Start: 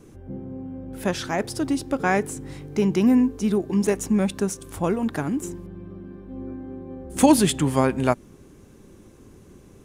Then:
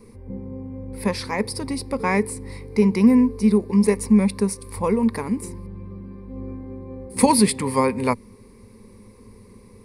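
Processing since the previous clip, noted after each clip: ripple EQ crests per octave 0.91, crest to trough 15 dB; gain -1 dB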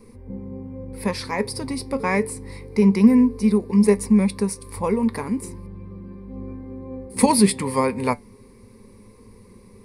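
flange 0.29 Hz, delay 3.7 ms, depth 4.3 ms, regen +74%; gain +4 dB

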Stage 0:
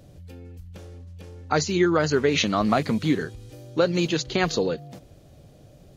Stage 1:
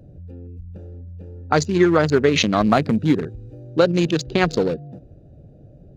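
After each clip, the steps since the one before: Wiener smoothing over 41 samples; spectral gain 0.47–0.7, 510–1900 Hz -19 dB; gain +5.5 dB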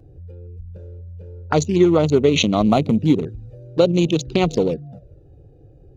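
envelope flanger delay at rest 2.7 ms, full sweep at -16 dBFS; gain +2 dB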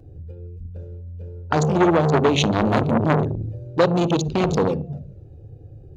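on a send at -17 dB: reverb RT60 0.35 s, pre-delay 47 ms; on the sum: core saturation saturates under 1100 Hz; gain +1 dB

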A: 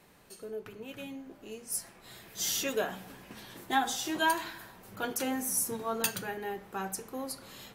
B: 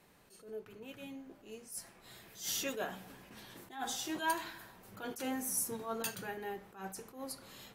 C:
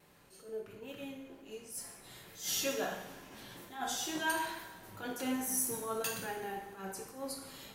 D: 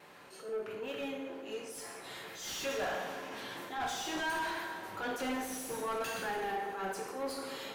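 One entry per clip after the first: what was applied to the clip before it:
attack slew limiter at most 140 dB/s; gain -4.5 dB
wow and flutter 27 cents; two-slope reverb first 0.81 s, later 2.8 s, DRR 1.5 dB
overdrive pedal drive 26 dB, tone 2100 Hz, clips at -20 dBFS; narrowing echo 0.139 s, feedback 76%, band-pass 400 Hz, level -9 dB; gain -6.5 dB

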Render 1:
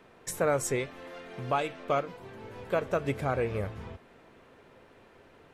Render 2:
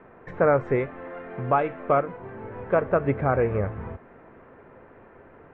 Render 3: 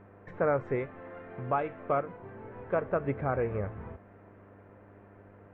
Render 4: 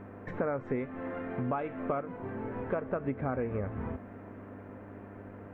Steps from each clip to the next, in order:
LPF 1900 Hz 24 dB/oct; gain +7 dB
buzz 100 Hz, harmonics 7, -49 dBFS -4 dB/oct; gain -7.5 dB
bell 250 Hz +11 dB 0.29 oct; compressor 5:1, threshold -36 dBFS, peak gain reduction 12.5 dB; gain +6 dB

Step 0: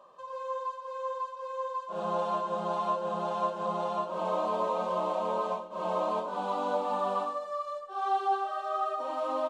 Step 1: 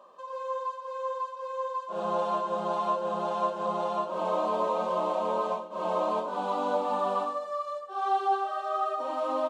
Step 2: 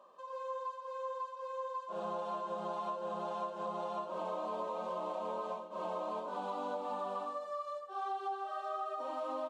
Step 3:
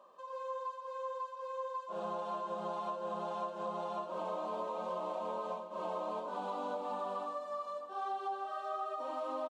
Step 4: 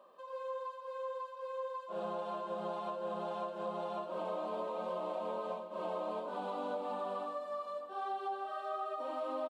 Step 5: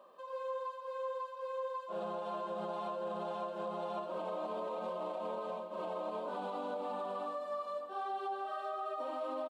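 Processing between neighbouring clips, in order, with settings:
resonant low shelf 170 Hz -8 dB, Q 1.5; gain +1.5 dB
compressor, threshold -29 dBFS, peak gain reduction 8 dB; gain -6 dB
feedback echo 0.598 s, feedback 48%, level -17.5 dB
fifteen-band EQ 100 Hz -10 dB, 1000 Hz -5 dB, 6300 Hz -9 dB; gain +2 dB
limiter -32.5 dBFS, peak gain reduction 6 dB; gain +1.5 dB

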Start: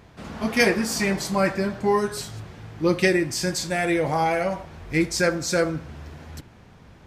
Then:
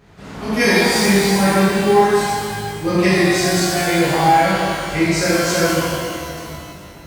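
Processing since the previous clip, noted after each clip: shimmer reverb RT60 2.1 s, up +12 st, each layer -8 dB, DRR -10 dB; gain -4 dB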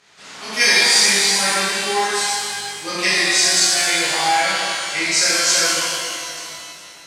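weighting filter ITU-R 468; gain -3.5 dB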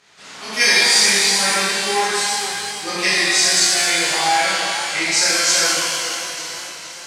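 warbling echo 0.453 s, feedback 59%, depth 98 cents, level -13 dB

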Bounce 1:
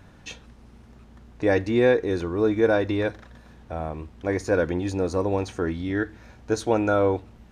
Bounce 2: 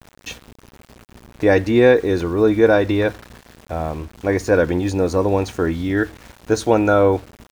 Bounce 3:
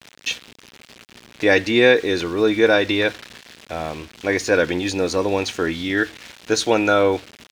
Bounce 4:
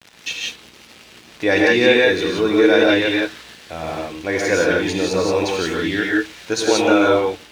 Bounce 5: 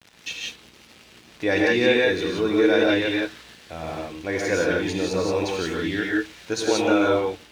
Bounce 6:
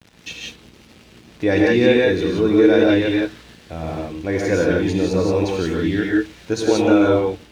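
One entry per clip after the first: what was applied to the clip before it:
sample gate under -44 dBFS; gain +6.5 dB
weighting filter D; gain -2 dB
non-linear reverb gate 0.2 s rising, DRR -2.5 dB; gain -2.5 dB
low shelf 250 Hz +4 dB; gain -6 dB
low shelf 470 Hz +11 dB; gain -1 dB

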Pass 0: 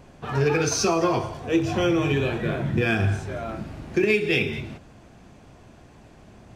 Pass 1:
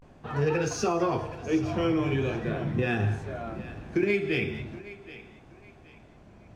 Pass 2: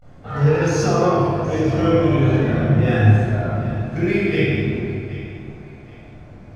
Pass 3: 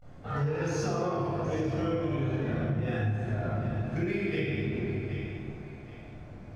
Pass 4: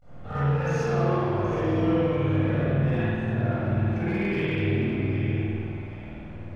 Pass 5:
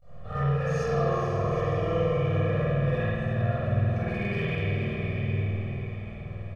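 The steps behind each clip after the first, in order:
vibrato 0.42 Hz 83 cents; high shelf 3000 Hz -8 dB; thinning echo 0.773 s, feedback 32%, high-pass 420 Hz, level -15.5 dB; gain -4 dB
bell 2600 Hz -5 dB 0.28 oct; reverb RT60 1.9 s, pre-delay 19 ms, DRR -6.5 dB; gain -1 dB
compressor 6:1, threshold -22 dBFS, peak gain reduction 14 dB; gain -5 dB
overloaded stage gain 25.5 dB; spring tank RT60 1.6 s, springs 50 ms, chirp 75 ms, DRR -9.5 dB; gain -3.5 dB
comb 1.7 ms, depth 87%; diffused feedback echo 0.468 s, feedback 41%, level -8 dB; gain -4.5 dB

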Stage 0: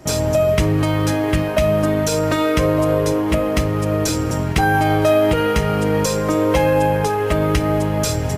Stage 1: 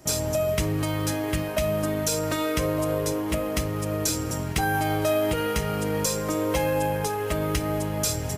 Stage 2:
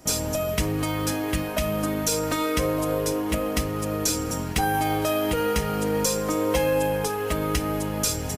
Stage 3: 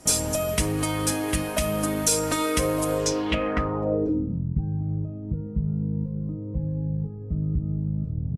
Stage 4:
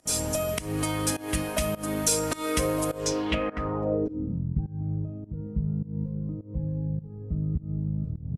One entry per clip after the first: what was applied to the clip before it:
high shelf 5100 Hz +11 dB; gain -9 dB
comb 4.1 ms, depth 40%; gain +1 dB
low-pass sweep 10000 Hz -> 150 Hz, 2.92–4.4
pump 103 bpm, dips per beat 1, -20 dB, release 0.24 s; gain -2 dB

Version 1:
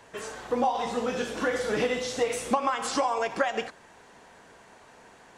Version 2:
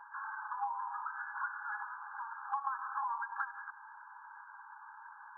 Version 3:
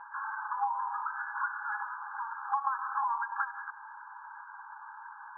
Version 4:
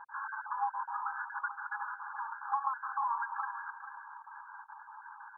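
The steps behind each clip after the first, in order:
FFT band-pass 800–1700 Hz; compressor 2.5:1, threshold -45 dBFS, peak gain reduction 14.5 dB; gain +5 dB
air absorption 400 m; gain +7.5 dB
random spectral dropouts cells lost 24%; feedback echo 0.441 s, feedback 34%, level -11 dB; gain -2 dB

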